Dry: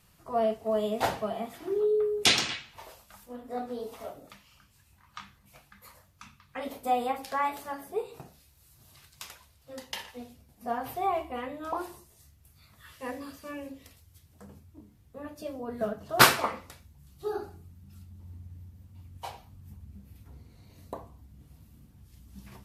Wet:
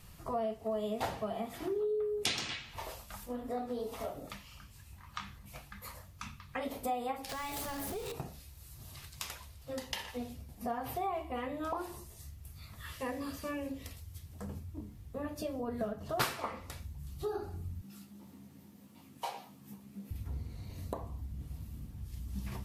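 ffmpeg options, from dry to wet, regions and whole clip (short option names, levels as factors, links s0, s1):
-filter_complex "[0:a]asettb=1/sr,asplit=3[s0][s1][s2];[s0]atrim=end=7.294[s3];[s1]atrim=start=7.29:end=8.12,asetpts=PTS-STARTPTS,afade=t=in:d=0.004:c=qsin,afade=t=out:st=0.826:d=0.004:c=qsin,aeval=exprs='val(0)+0.5*0.0112*sgn(val(0))':c=same,acrossover=split=180|3000[s4][s5][s6];[s5]acompressor=threshold=0.00891:ratio=6:attack=3.2:release=140:knee=2.83:detection=peak[s7];[s4][s7][s6]amix=inputs=3:normalize=0[s8];[s2]atrim=start=8.116[s9];[s3][s8]acrossfade=d=0.004:c1=hsin:c2=qsin[s10];[s10][s9]acrossfade=d=0.004:c1=qsin:c2=hsin,asettb=1/sr,asplit=3[s11][s12][s13];[s11]atrim=end=17.814[s14];[s12]atrim=start=17.81:end=20.11,asetpts=PTS-STARTPTS,afade=t=in:d=0.004:c=qsin,afade=t=out:st=2.296:d=0.004:c=qsin,highpass=f=210:w=0.5412,highpass=f=210:w=1.3066,asplit=2[s15][s16];[s16]adelay=15,volume=0.631[s17];[s15][s17]amix=inputs=2:normalize=0,atrim=end_sample=101430[s18];[s13]atrim=start=20.106[s19];[s14][s18]acrossfade=d=0.004:c1=hsin:c2=qsin[s20];[s20][s19]acrossfade=d=0.004:c1=qsin:c2=hsin,acompressor=threshold=0.00794:ratio=3,lowshelf=f=96:g=9.5,bandreject=f=1500:w=23,volume=1.78"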